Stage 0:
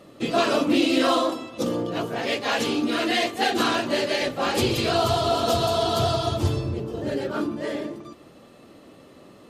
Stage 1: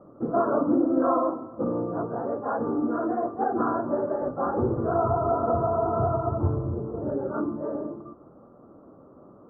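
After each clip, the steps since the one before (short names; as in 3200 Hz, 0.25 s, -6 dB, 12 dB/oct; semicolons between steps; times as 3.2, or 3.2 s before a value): steep low-pass 1400 Hz 72 dB/oct; gain -1.5 dB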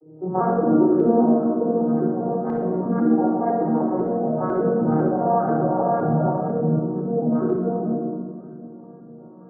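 arpeggiated vocoder minor triad, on D#3, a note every 0.2 s; LFO low-pass saw up 2 Hz 370–1600 Hz; shoebox room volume 3400 m³, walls mixed, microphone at 3.9 m; gain -3 dB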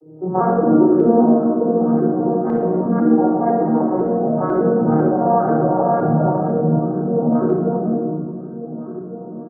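outdoor echo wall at 250 m, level -12 dB; gain +4 dB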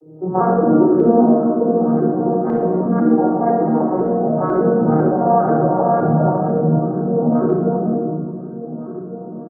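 doubler 37 ms -13.5 dB; gain +1 dB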